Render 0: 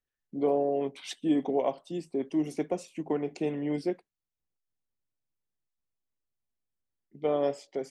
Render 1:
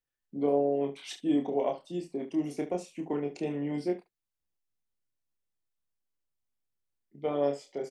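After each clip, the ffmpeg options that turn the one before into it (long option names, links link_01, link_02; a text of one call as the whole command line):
ffmpeg -i in.wav -af "aecho=1:1:28|71:0.631|0.211,volume=-3dB" out.wav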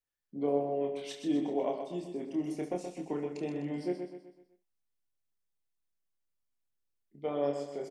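ffmpeg -i in.wav -af "aecho=1:1:126|252|378|504|630:0.447|0.197|0.0865|0.0381|0.0167,volume=-3.5dB" out.wav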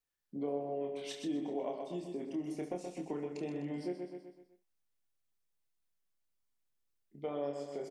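ffmpeg -i in.wav -af "acompressor=threshold=-40dB:ratio=2,volume=1dB" out.wav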